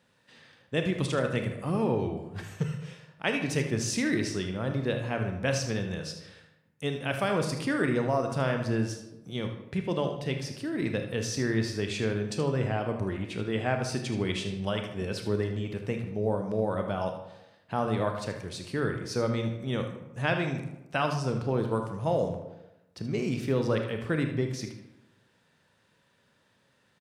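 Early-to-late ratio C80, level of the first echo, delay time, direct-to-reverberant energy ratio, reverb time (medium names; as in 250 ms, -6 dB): 10.0 dB, -10.5 dB, 77 ms, 4.5 dB, 0.95 s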